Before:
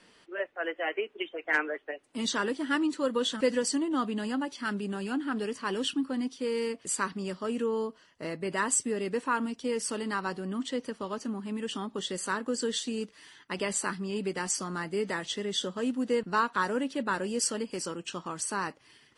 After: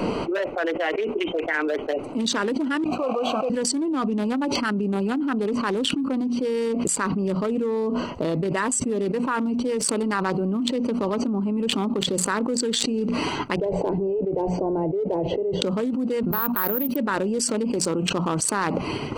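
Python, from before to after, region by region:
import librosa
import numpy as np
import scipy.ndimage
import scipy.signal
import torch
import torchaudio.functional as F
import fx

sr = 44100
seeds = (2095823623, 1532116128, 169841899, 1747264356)

y = fx.chain(x, sr, fx.block_float(bits=3),
    fx.vowel_filter(vowel='a'),
    fx.high_shelf(hz=5000.0, db=11.5), at=(2.84, 3.5))
y = fx.chain(y, sr, fx.lowpass(hz=1000.0, slope=12),
    fx.fixed_phaser(hz=520.0, stages=4), at=(13.56, 15.62))
y = fx.chain(y, sr, fx.resample_bad(factor=3, down='filtered', up='zero_stuff'),
    fx.level_steps(step_db=17),
    fx.upward_expand(threshold_db=-48.0, expansion=1.5), at=(16.31, 16.96))
y = fx.wiener(y, sr, points=25)
y = fx.hum_notches(y, sr, base_hz=60, count=4)
y = fx.env_flatten(y, sr, amount_pct=100)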